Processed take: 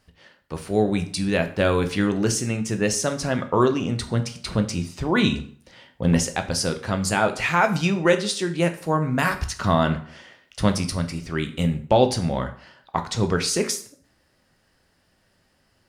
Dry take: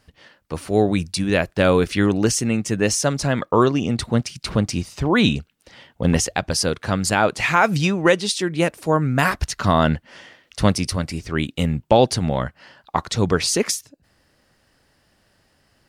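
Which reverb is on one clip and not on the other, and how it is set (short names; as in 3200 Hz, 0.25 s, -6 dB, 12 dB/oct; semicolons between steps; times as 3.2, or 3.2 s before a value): plate-style reverb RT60 0.51 s, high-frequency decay 0.8×, pre-delay 0 ms, DRR 6.5 dB; gain -4 dB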